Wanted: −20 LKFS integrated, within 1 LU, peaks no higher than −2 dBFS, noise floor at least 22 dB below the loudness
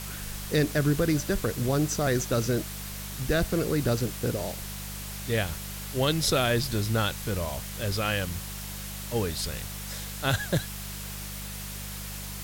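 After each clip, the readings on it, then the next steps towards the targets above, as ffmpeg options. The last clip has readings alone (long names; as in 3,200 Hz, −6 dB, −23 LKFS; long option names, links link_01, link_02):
mains hum 50 Hz; hum harmonics up to 200 Hz; level of the hum −37 dBFS; background noise floor −37 dBFS; target noise floor −51 dBFS; integrated loudness −29.0 LKFS; sample peak −11.5 dBFS; target loudness −20.0 LKFS
→ -af "bandreject=frequency=50:width_type=h:width=4,bandreject=frequency=100:width_type=h:width=4,bandreject=frequency=150:width_type=h:width=4,bandreject=frequency=200:width_type=h:width=4"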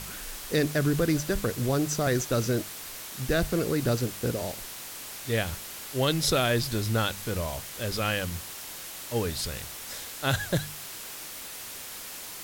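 mains hum none found; background noise floor −41 dBFS; target noise floor −52 dBFS
→ -af "afftdn=noise_reduction=11:noise_floor=-41"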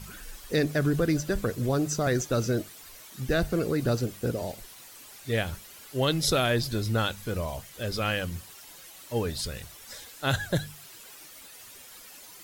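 background noise floor −49 dBFS; target noise floor −51 dBFS
→ -af "afftdn=noise_reduction=6:noise_floor=-49"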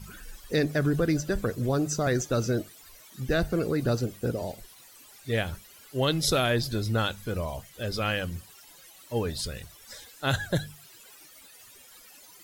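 background noise floor −53 dBFS; integrated loudness −28.5 LKFS; sample peak −12.5 dBFS; target loudness −20.0 LKFS
→ -af "volume=8.5dB"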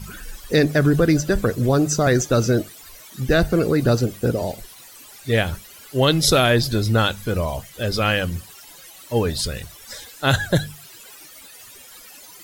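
integrated loudness −20.0 LKFS; sample peak −4.0 dBFS; background noise floor −44 dBFS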